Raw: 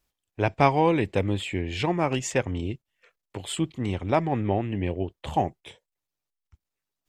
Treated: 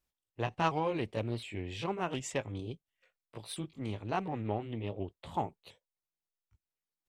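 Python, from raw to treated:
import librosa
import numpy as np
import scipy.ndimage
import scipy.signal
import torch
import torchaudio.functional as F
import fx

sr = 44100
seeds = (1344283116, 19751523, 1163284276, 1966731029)

y = fx.pitch_ramps(x, sr, semitones=3.0, every_ms=713)
y = fx.doppler_dist(y, sr, depth_ms=0.15)
y = y * librosa.db_to_amplitude(-9.0)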